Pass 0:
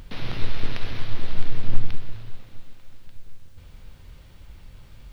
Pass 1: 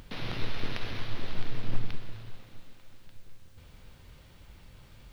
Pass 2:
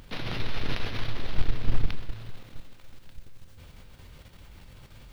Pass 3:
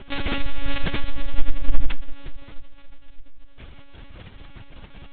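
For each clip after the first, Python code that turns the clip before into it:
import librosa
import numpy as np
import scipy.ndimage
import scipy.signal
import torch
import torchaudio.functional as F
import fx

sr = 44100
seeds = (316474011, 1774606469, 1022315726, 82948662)

y1 = fx.low_shelf(x, sr, hz=76.0, db=-8.5)
y1 = y1 * librosa.db_to_amplitude(-2.0)
y2 = fx.level_steps(y1, sr, step_db=9)
y2 = y2 * librosa.db_to_amplitude(7.0)
y3 = fx.lpc_monotone(y2, sr, seeds[0], pitch_hz=280.0, order=16)
y3 = y3 * librosa.db_to_amplitude(8.5)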